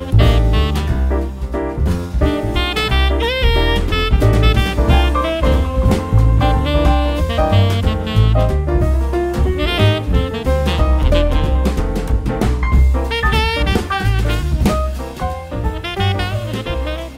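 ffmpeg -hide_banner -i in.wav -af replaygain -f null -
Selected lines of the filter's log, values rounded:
track_gain = -0.0 dB
track_peak = 0.546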